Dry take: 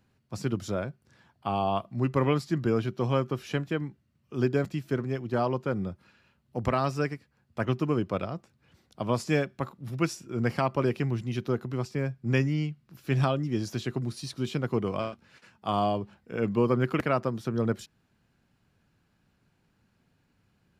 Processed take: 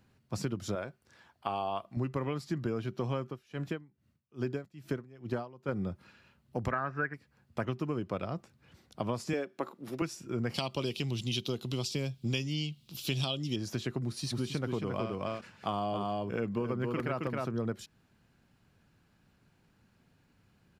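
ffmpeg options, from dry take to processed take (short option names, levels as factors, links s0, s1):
-filter_complex "[0:a]asettb=1/sr,asplit=3[s0][s1][s2];[s0]atrim=end=0.754[s3];[s1]atrim=start=0.75:end=1.97,asetpts=PTS-STARTPTS,afade=t=in:d=0.004:c=qsin,afade=t=out:st=1.216:d=0.004:c=qsin,equalizer=f=140:w=0.67:g=-10.5[s4];[s2]atrim=start=1.966[s5];[s3][s4]acrossfade=d=0.004:c1=hsin:c2=qsin[s6];[s6][s5]acrossfade=d=0.004:c1=qsin:c2=hsin,asettb=1/sr,asplit=3[s7][s8][s9];[s7]atrim=end=3.254[s10];[s8]atrim=start=3.25:end=5.69,asetpts=PTS-STARTPTS,afade=t=in:d=0.004:c=qsin,afade=t=out:st=2.436:d=0.004:c=qsin,aeval=exprs='val(0)*pow(10,-25*(0.5-0.5*cos(2*PI*2.4*n/s))/20)':c=same[s11];[s9]atrim=start=5.686[s12];[s10][s11]acrossfade=d=0.004:c1=hsin:c2=qsin[s13];[s13][s12]acrossfade=d=0.004:c1=qsin:c2=hsin,asettb=1/sr,asplit=3[s14][s15][s16];[s14]atrim=end=6.714[s17];[s15]atrim=start=6.71:end=7.14,asetpts=PTS-STARTPTS,afade=t=in:d=0.004:c=qsin,afade=t=out:st=0.426:d=0.004:c=qsin,lowpass=f=1600:t=q:w=9.6[s18];[s16]atrim=start=7.136[s19];[s17][s18]acrossfade=d=0.004:c1=hsin:c2=qsin[s20];[s20][s19]acrossfade=d=0.004:c1=qsin:c2=hsin,asettb=1/sr,asplit=3[s21][s22][s23];[s21]atrim=end=9.334[s24];[s22]atrim=start=9.33:end=10.02,asetpts=PTS-STARTPTS,afade=t=in:d=0.004:c=qsin,afade=t=out:st=0.686:d=0.004:c=qsin,highpass=f=330:t=q:w=1.7[s25];[s23]atrim=start=10.016[s26];[s24][s25]acrossfade=d=0.004:c1=hsin:c2=qsin[s27];[s27][s26]acrossfade=d=0.004:c1=qsin:c2=hsin,asettb=1/sr,asplit=3[s28][s29][s30];[s28]atrim=end=10.544[s31];[s29]atrim=start=10.54:end=13.56,asetpts=PTS-STARTPTS,afade=t=in:d=0.004:c=qsin,afade=t=out:st=3.016:d=0.004:c=qsin,highshelf=f=2400:t=q:w=3:g=11.5[s32];[s30]atrim=start=13.556[s33];[s31][s32]acrossfade=d=0.004:c1=hsin:c2=qsin[s34];[s34][s33]acrossfade=d=0.004:c1=qsin:c2=hsin,asplit=3[s35][s36][s37];[s35]afade=t=out:st=14.31:d=0.02[s38];[s36]aecho=1:1:269:0.631,afade=t=in:st=14.31:d=0.02,afade=t=out:st=17.49:d=0.02[s39];[s37]afade=t=in:st=17.49:d=0.02[s40];[s38][s39][s40]amix=inputs=3:normalize=0,acompressor=threshold=0.0251:ratio=6,volume=1.26"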